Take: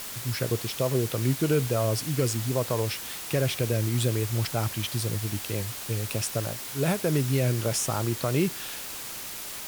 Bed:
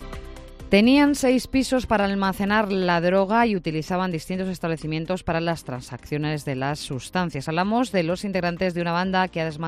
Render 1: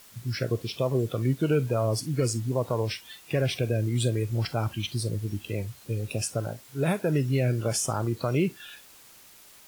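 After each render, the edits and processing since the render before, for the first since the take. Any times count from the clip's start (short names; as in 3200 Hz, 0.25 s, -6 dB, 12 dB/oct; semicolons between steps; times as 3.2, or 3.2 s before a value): noise print and reduce 15 dB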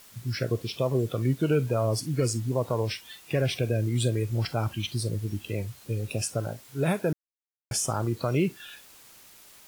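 7.13–7.71 mute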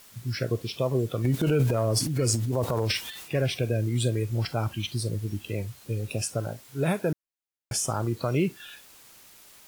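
1.24–3.35 transient shaper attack -2 dB, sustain +11 dB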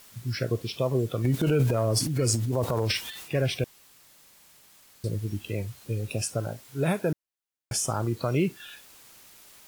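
3.64–5.04 room tone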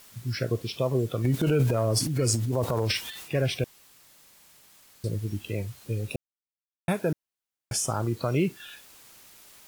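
6.16–6.88 mute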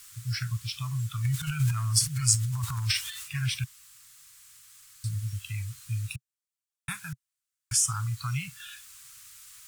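elliptic band-stop 130–1200 Hz, stop band 50 dB; bell 8000 Hz +7 dB 0.83 oct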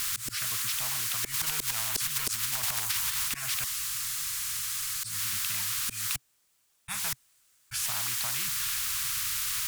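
auto swell 0.184 s; spectral compressor 10:1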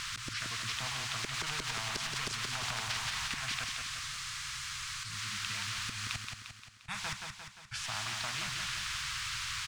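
air absorption 120 m; feedback echo 0.175 s, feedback 54%, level -5 dB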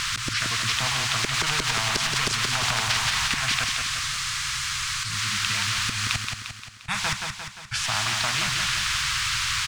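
gain +12 dB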